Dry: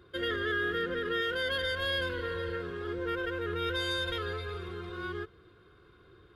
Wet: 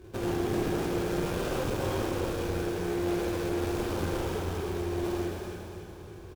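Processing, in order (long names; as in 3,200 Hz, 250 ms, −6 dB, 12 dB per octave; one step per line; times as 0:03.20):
sample-rate reduction 2,000 Hz, jitter 20%
low-shelf EQ 240 Hz +8.5 dB
downward compressor 2 to 1, threshold −38 dBFS, peak gain reduction 8 dB
parametric band 370 Hz +7.5 dB 0.42 octaves
on a send: repeating echo 282 ms, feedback 51%, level −7 dB
on the sum: dense smooth reverb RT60 1.5 s, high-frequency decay 1×, DRR −3.5 dB
asymmetric clip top −31 dBFS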